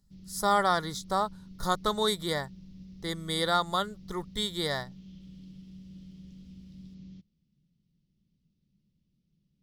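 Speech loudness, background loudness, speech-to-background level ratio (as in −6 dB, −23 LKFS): −30.0 LKFS, −49.0 LKFS, 19.0 dB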